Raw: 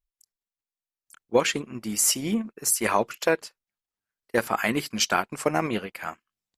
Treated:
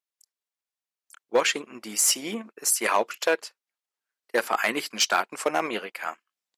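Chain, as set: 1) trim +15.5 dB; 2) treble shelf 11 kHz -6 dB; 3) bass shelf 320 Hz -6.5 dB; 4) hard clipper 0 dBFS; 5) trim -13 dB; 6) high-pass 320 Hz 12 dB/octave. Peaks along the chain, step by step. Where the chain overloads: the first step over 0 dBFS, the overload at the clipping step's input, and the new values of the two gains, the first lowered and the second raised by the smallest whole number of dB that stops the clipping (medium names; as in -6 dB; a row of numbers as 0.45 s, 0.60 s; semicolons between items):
+7.5 dBFS, +7.5 dBFS, +7.5 dBFS, 0.0 dBFS, -13.0 dBFS, -8.5 dBFS; step 1, 7.5 dB; step 1 +7.5 dB, step 5 -5 dB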